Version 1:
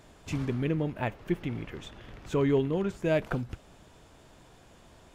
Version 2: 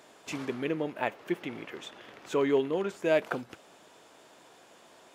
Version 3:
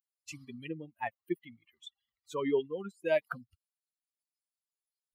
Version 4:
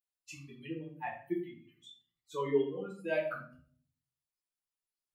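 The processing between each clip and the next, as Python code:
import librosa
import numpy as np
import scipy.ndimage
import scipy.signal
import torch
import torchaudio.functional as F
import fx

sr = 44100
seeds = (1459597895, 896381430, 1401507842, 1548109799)

y1 = scipy.signal.sosfilt(scipy.signal.butter(2, 350.0, 'highpass', fs=sr, output='sos'), x)
y1 = y1 * librosa.db_to_amplitude(2.5)
y2 = fx.bin_expand(y1, sr, power=3.0)
y3 = fx.room_shoebox(y2, sr, seeds[0], volume_m3=50.0, walls='mixed', distance_m=1.1)
y3 = y3 * librosa.db_to_amplitude(-8.0)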